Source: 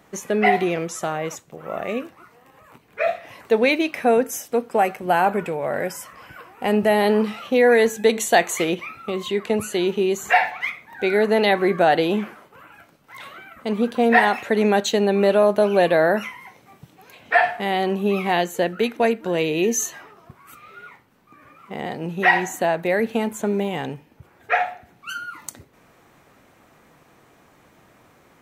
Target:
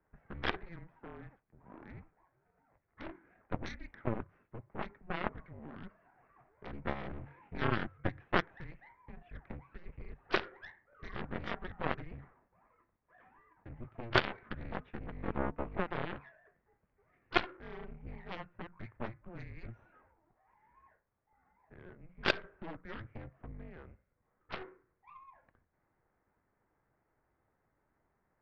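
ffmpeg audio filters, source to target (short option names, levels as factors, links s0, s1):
-af "aeval=exprs='if(lt(val(0),0),0.447*val(0),val(0))':c=same,highpass=f=230:t=q:w=0.5412,highpass=f=230:t=q:w=1.307,lowpass=f=2400:t=q:w=0.5176,lowpass=f=2400:t=q:w=0.7071,lowpass=f=2400:t=q:w=1.932,afreqshift=-350,aeval=exprs='0.531*(cos(1*acos(clip(val(0)/0.531,-1,1)))-cos(1*PI/2))+0.211*(cos(3*acos(clip(val(0)/0.531,-1,1)))-cos(3*PI/2))+0.0473*(cos(4*acos(clip(val(0)/0.531,-1,1)))-cos(4*PI/2))+0.00422*(cos(5*acos(clip(val(0)/0.531,-1,1)))-cos(5*PI/2))+0.0106*(cos(6*acos(clip(val(0)/0.531,-1,1)))-cos(6*PI/2))':c=same,volume=0.668"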